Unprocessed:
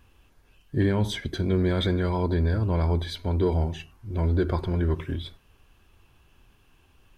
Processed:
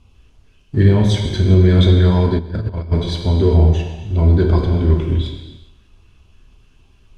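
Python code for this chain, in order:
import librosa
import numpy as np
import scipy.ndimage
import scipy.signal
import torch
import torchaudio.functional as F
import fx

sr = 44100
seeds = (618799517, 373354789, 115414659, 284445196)

p1 = fx.bass_treble(x, sr, bass_db=4, treble_db=6)
p2 = fx.filter_lfo_notch(p1, sr, shape='square', hz=3.4, low_hz=800.0, high_hz=1700.0, q=2.0)
p3 = fx.low_shelf(p2, sr, hz=100.0, db=3.0)
p4 = np.sign(p3) * np.maximum(np.abs(p3) - 10.0 ** (-37.5 / 20.0), 0.0)
p5 = p3 + (p4 * librosa.db_to_amplitude(-4.0))
p6 = scipy.signal.sosfilt(scipy.signal.butter(2, 6200.0, 'lowpass', fs=sr, output='sos'), p5)
p7 = fx.rev_gated(p6, sr, seeds[0], gate_ms=440, shape='falling', drr_db=1.0)
p8 = fx.over_compress(p7, sr, threshold_db=-18.0, ratio=-0.5, at=(2.37, 2.91), fade=0.02)
p9 = fx.echo_feedback(p8, sr, ms=127, feedback_pct=52, wet_db=-20.0)
y = p9 * librosa.db_to_amplitude(1.0)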